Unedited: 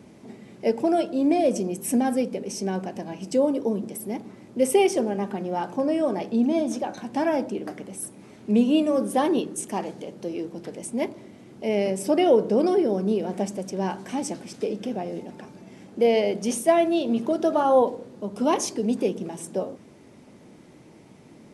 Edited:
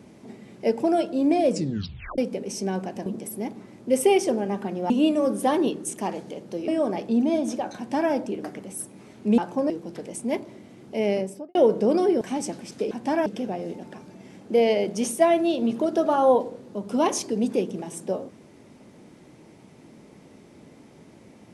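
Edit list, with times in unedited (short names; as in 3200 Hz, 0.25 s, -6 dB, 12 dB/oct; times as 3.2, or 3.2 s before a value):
1.5 tape stop 0.68 s
3.06–3.75 cut
5.59–5.91 swap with 8.61–10.39
7–7.35 copy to 14.73
11.78–12.24 studio fade out
12.9–14.03 cut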